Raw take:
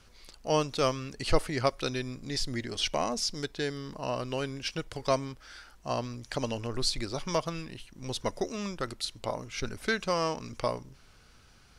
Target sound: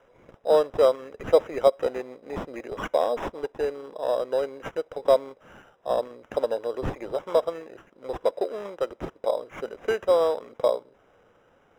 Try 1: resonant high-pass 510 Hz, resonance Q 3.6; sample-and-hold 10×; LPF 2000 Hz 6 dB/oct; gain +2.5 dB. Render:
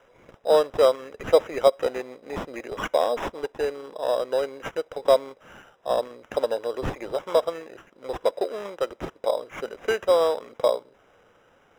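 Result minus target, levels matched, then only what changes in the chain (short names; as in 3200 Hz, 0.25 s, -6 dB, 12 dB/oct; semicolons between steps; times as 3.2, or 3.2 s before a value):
2000 Hz band +2.5 dB
change: LPF 970 Hz 6 dB/oct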